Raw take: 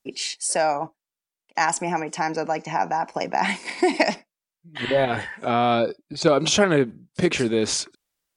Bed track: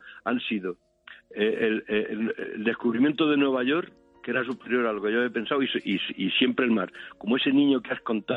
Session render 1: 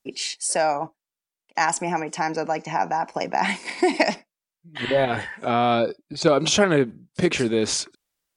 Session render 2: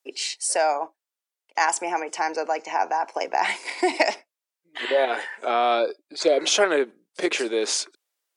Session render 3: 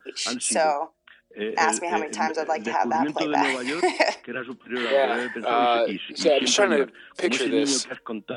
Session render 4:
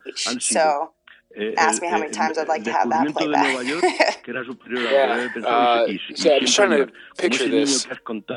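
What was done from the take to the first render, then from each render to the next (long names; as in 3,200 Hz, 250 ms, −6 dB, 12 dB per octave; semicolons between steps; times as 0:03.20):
no processing that can be heard
high-pass filter 360 Hz 24 dB per octave; 0:06.23–0:06.50: healed spectral selection 760–2,200 Hz after
mix in bed track −5 dB
level +3.5 dB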